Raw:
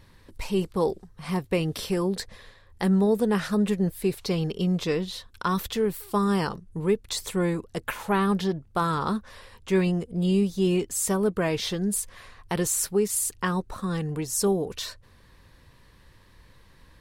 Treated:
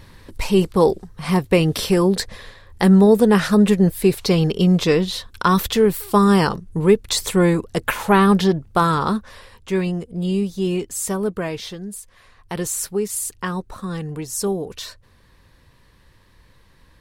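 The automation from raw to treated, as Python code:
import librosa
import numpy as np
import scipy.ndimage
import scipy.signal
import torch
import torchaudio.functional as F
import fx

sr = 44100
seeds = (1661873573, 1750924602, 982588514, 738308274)

y = fx.gain(x, sr, db=fx.line((8.66, 9.5), (9.77, 1.5), (11.33, 1.5), (12.01, -7.5), (12.61, 1.0)))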